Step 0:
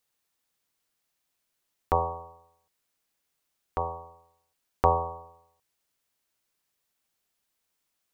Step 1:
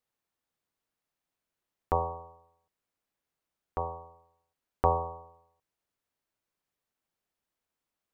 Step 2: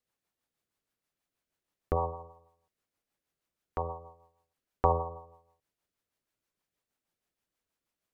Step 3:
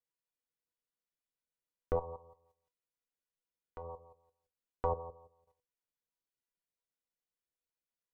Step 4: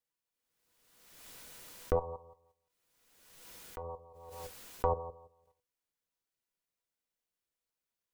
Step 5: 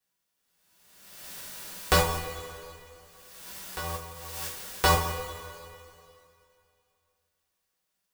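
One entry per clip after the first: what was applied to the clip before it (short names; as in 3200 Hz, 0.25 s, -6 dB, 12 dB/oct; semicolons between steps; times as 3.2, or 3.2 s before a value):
high shelf 2300 Hz -10.5 dB; gain -2 dB
rotary speaker horn 6.3 Hz; gain +3 dB
level quantiser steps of 14 dB; resonator 490 Hz, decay 0.18 s, harmonics all, mix 80%; gain +8 dB
backwards sustainer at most 41 dB/s; gain +2.5 dB
spectral whitening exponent 0.3; two-slope reverb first 0.27 s, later 2.6 s, from -18 dB, DRR -7 dB; gain +3 dB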